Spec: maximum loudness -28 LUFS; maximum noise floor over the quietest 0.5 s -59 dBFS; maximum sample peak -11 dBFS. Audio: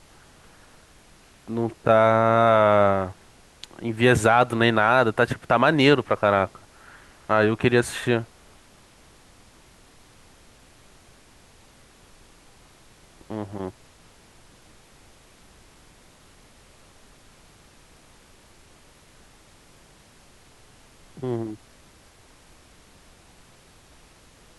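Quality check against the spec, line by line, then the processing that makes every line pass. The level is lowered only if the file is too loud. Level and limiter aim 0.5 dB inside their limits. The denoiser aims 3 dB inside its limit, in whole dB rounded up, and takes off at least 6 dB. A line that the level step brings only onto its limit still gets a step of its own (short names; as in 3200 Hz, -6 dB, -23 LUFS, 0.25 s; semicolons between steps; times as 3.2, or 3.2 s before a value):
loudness -21.0 LUFS: fail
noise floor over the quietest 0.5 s -53 dBFS: fail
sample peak -5.5 dBFS: fail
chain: gain -7.5 dB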